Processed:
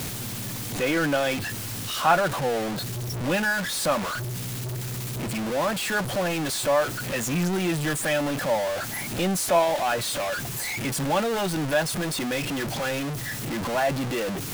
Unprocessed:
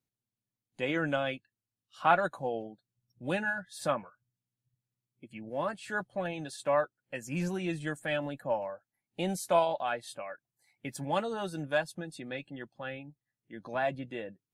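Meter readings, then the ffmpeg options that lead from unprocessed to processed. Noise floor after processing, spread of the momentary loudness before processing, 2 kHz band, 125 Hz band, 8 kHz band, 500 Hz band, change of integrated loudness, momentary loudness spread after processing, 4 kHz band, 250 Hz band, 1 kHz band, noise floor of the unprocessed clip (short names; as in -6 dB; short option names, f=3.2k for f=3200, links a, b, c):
-33 dBFS, 17 LU, +8.5 dB, +12.0 dB, +18.0 dB, +7.5 dB, +7.5 dB, 8 LU, +14.0 dB, +10.0 dB, +6.5 dB, under -85 dBFS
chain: -af "aeval=exprs='val(0)+0.5*0.0447*sgn(val(0))':c=same,volume=3dB"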